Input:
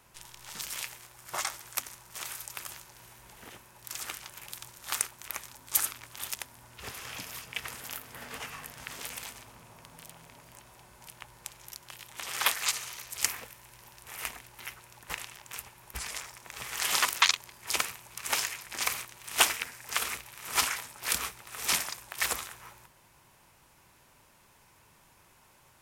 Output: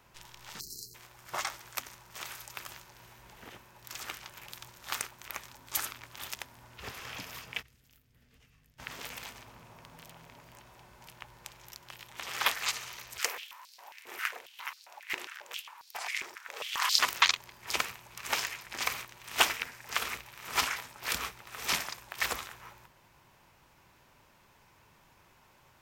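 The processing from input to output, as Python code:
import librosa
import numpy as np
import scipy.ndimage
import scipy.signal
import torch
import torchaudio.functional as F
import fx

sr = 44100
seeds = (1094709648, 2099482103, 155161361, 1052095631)

y = fx.spec_erase(x, sr, start_s=0.6, length_s=0.35, low_hz=470.0, high_hz=4000.0)
y = fx.tone_stack(y, sr, knobs='10-0-1', at=(7.61, 8.78), fade=0.02)
y = fx.filter_held_highpass(y, sr, hz=7.4, low_hz=340.0, high_hz=4500.0, at=(13.18, 16.98), fade=0.02)
y = fx.peak_eq(y, sr, hz=10000.0, db=-10.5, octaves=0.98)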